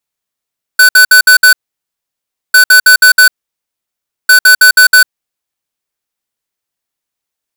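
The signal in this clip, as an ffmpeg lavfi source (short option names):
-f lavfi -i "aevalsrc='0.708*(2*lt(mod(1500*t,1),0.5)-1)*clip(min(mod(mod(t,1.75),0.16),0.1-mod(mod(t,1.75),0.16))/0.005,0,1)*lt(mod(t,1.75),0.8)':d=5.25:s=44100"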